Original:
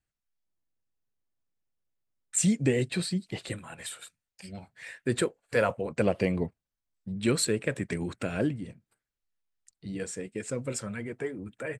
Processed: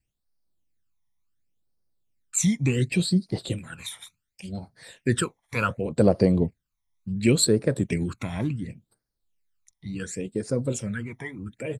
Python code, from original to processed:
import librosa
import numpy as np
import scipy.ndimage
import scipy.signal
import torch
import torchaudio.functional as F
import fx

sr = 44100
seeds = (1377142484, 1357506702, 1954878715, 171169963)

y = fx.phaser_stages(x, sr, stages=12, low_hz=460.0, high_hz=2700.0, hz=0.69, feedback_pct=45)
y = y * 10.0 ** (6.0 / 20.0)